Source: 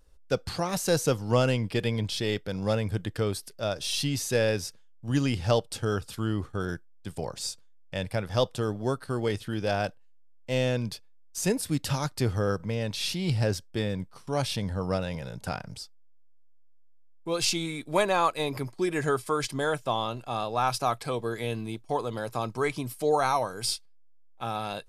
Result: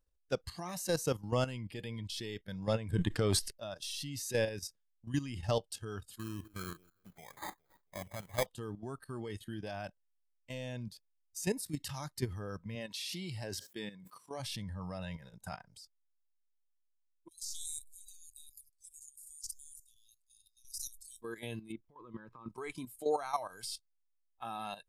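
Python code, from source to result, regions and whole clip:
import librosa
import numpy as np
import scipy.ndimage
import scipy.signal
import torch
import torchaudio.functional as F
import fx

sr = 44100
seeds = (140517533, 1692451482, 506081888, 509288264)

y = fx.chain(x, sr, fx.lowpass(hz=9400.0, slope=12),
    fx.transient(attack_db=12, sustain_db=6),
    fx.sustainer(db_per_s=58.0), at=(2.66, 3.51))
y = fx.chain(y, sr, fx.low_shelf(hz=430.0, db=-4.0),
    fx.echo_alternate(ms=137, hz=940.0, feedback_pct=53, wet_db=-13.5),
    fx.sample_hold(seeds[0], rate_hz=2800.0, jitter_pct=0), at=(6.19, 8.46))
y = fx.chain(y, sr, fx.highpass(hz=240.0, slope=6),
    fx.sustainer(db_per_s=56.0), at=(12.75, 14.4))
y = fx.chain(y, sr, fx.cheby2_bandstop(low_hz=200.0, high_hz=1200.0, order=4, stop_db=80),
    fx.sustainer(db_per_s=29.0), at=(17.28, 21.22))
y = fx.chain(y, sr, fx.lowpass(hz=2000.0, slope=12),
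    fx.over_compress(threshold_db=-33.0, ratio=-1.0),
    fx.peak_eq(hz=730.0, db=-12.5, octaves=0.53), at=(21.72, 22.49))
y = fx.noise_reduce_blind(y, sr, reduce_db=11)
y = fx.high_shelf(y, sr, hz=11000.0, db=4.5)
y = fx.level_steps(y, sr, step_db=12)
y = y * librosa.db_to_amplitude(-5.0)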